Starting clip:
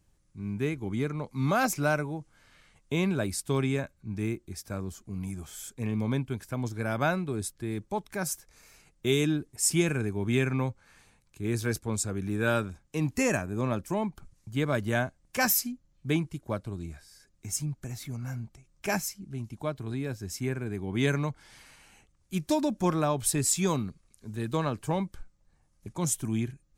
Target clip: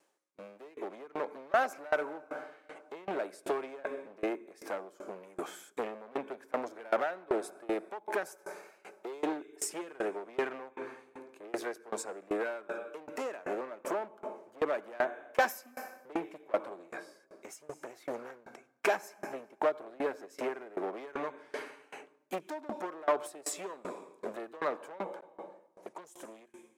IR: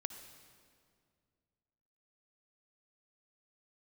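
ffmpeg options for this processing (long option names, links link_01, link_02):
-filter_complex "[0:a]asplit=2[link_01][link_02];[1:a]atrim=start_sample=2205[link_03];[link_02][link_03]afir=irnorm=-1:irlink=0,volume=-4.5dB[link_04];[link_01][link_04]amix=inputs=2:normalize=0,acompressor=threshold=-31dB:ratio=8,highshelf=frequency=2300:gain=-9.5,asoftclip=type=hard:threshold=-34.5dB,highpass=frequency=390:width=0.5412,highpass=frequency=390:width=1.3066,acrossover=split=2500[link_05][link_06];[link_05]dynaudnorm=framelen=190:gausssize=11:maxgain=9dB[link_07];[link_07][link_06]amix=inputs=2:normalize=0,aeval=exprs='val(0)*pow(10,-25*if(lt(mod(2.6*n/s,1),2*abs(2.6)/1000),1-mod(2.6*n/s,1)/(2*abs(2.6)/1000),(mod(2.6*n/s,1)-2*abs(2.6)/1000)/(1-2*abs(2.6)/1000))/20)':channel_layout=same,volume=8dB"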